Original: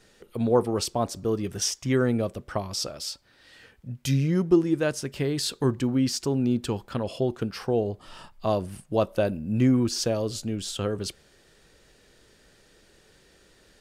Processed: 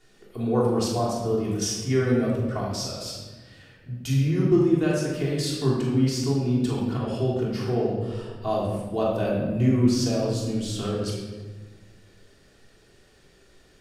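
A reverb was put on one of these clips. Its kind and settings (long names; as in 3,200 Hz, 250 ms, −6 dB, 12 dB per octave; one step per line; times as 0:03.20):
rectangular room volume 1,100 cubic metres, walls mixed, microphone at 3.3 metres
level −6.5 dB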